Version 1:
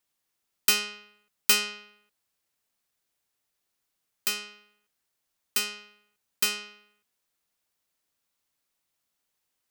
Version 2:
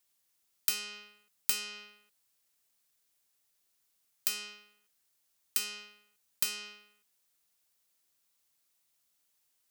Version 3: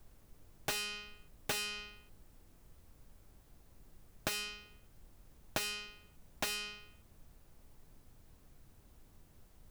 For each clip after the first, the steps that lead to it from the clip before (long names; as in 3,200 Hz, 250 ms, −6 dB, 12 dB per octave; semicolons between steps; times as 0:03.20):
high-shelf EQ 3,500 Hz +8.5 dB; downward compressor 5 to 1, threshold −26 dBFS, peak gain reduction 15.5 dB; level −2.5 dB
phase distortion by the signal itself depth 0.51 ms; background noise brown −61 dBFS; slew-rate limiting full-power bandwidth 99 Hz; level +3 dB